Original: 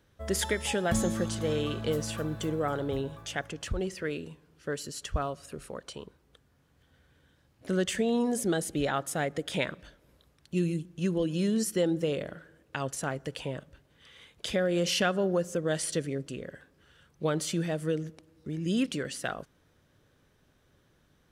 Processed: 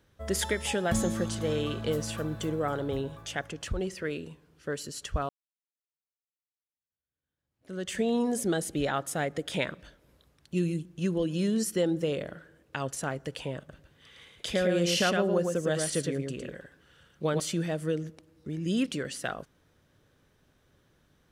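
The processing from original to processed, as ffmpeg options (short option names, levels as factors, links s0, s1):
-filter_complex "[0:a]asettb=1/sr,asplit=3[s0][s1][s2];[s0]atrim=end=13.584[s3];[s1]atrim=start=13.58:end=17.4,asetpts=PTS-STARTPTS,afade=t=in:d=0.004:c=qsin,afade=t=out:st=3.816:d=0.004:c=qsin,aecho=1:1:110:0.631,atrim=end_sample=168462[s4];[s2]atrim=start=17.396[s5];[s3][s4]acrossfade=d=0.004:c1=hsin:c2=qsin[s6];[s6][s5]acrossfade=d=0.004:c1=qsin:c2=hsin,asplit=2[s7][s8];[s7]atrim=end=5.29,asetpts=PTS-STARTPTS,afade=t=out:st=5.286:d=0.004:c=hsin[s9];[s8]atrim=start=5.29,asetpts=PTS-STARTPTS,afade=t=in:d=2.72:c=exp[s10];[s9][s10]concat=n=2:v=0:a=1"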